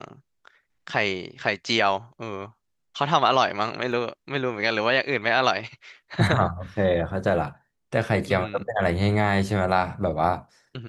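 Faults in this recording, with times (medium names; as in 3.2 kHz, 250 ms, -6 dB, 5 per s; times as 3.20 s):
3.92 s: dropout 2.1 ms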